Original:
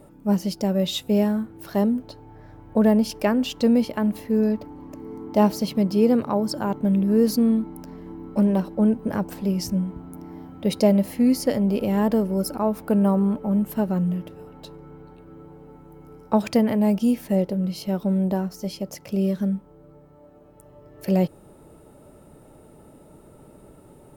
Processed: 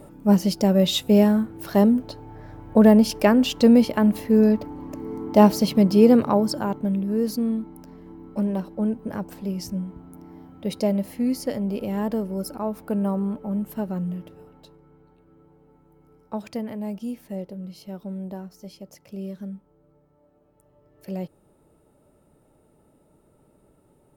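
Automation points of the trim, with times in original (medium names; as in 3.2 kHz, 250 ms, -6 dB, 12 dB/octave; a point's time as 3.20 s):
6.29 s +4 dB
7.03 s -5 dB
14.39 s -5 dB
14.82 s -11 dB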